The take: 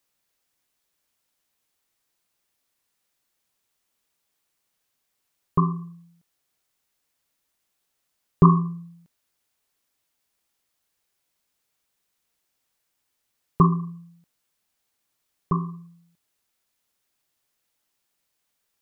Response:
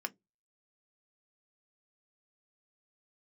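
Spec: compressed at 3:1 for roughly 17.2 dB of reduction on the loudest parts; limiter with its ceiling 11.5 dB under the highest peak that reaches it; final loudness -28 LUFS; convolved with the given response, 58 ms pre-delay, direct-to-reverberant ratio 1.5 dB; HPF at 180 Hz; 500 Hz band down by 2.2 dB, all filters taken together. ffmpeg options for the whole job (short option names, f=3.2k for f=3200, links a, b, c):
-filter_complex "[0:a]highpass=180,equalizer=f=500:t=o:g=-3,acompressor=threshold=-38dB:ratio=3,alimiter=level_in=6dB:limit=-24dB:level=0:latency=1,volume=-6dB,asplit=2[a][b];[1:a]atrim=start_sample=2205,adelay=58[c];[b][c]afir=irnorm=-1:irlink=0,volume=-3dB[d];[a][d]amix=inputs=2:normalize=0,volume=18.5dB"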